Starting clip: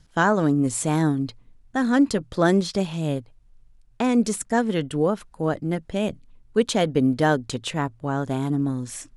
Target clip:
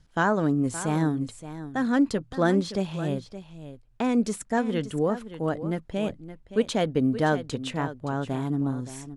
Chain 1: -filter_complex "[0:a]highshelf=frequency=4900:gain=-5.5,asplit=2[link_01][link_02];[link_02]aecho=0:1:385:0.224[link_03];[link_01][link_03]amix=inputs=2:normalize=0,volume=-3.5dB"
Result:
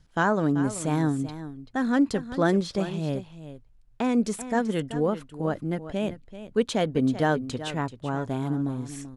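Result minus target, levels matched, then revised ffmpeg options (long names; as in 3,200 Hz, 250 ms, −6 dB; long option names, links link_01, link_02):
echo 185 ms early
-filter_complex "[0:a]highshelf=frequency=4900:gain=-5.5,asplit=2[link_01][link_02];[link_02]aecho=0:1:570:0.224[link_03];[link_01][link_03]amix=inputs=2:normalize=0,volume=-3.5dB"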